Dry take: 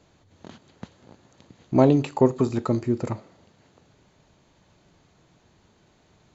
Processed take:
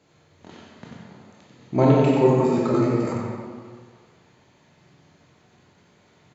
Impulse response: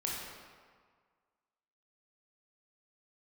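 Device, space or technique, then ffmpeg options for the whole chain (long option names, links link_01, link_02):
PA in a hall: -filter_complex "[0:a]highpass=100,equalizer=frequency=2100:width_type=o:width=0.68:gain=4,aecho=1:1:92:0.631[link_01];[1:a]atrim=start_sample=2205[link_02];[link_01][link_02]afir=irnorm=-1:irlink=0,asettb=1/sr,asplit=3[link_03][link_04][link_05];[link_03]atrim=end=2.724[link_06];[link_04]atrim=start=2.72:end=3.13,asetpts=PTS-STARTPTS,afade=type=in:duration=0.004:curve=qsin,afade=type=out:start_time=0.406:duration=0.004:curve=qsin,asplit=2[link_07][link_08];[link_08]adelay=15,volume=-2dB[link_09];[link_07][link_09]amix=inputs=2:normalize=0,atrim=end_sample=18081[link_10];[link_05]atrim=start=3.126[link_11];[link_06][link_10]acrossfade=duration=0.004:curve1=hsin:curve2=qsin[link_12];[link_12][link_11]acrossfade=duration=0.004:curve1=qsin:curve2=hsin,volume=-2dB"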